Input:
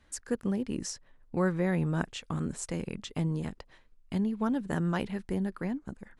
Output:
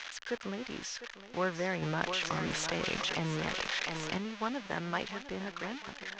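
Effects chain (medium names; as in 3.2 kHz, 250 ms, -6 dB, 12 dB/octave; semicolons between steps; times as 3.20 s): zero-crossing glitches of -21 dBFS; elliptic low-pass 6.4 kHz, stop band 50 dB; three-band isolator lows -12 dB, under 470 Hz, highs -17 dB, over 3.5 kHz; thinning echo 703 ms, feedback 49%, high-pass 360 Hz, level -11 dB; 1.82–4.18 s: level flattener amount 70%; trim +1.5 dB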